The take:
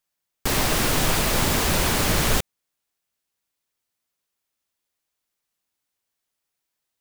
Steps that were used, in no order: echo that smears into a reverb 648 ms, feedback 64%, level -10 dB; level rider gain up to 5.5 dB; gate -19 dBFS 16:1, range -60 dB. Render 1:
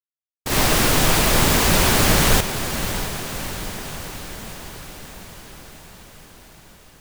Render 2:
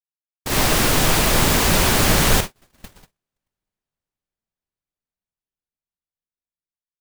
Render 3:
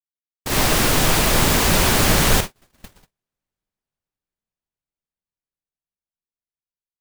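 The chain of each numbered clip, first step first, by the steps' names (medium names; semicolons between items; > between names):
level rider > gate > echo that smears into a reverb; echo that smears into a reverb > level rider > gate; level rider > echo that smears into a reverb > gate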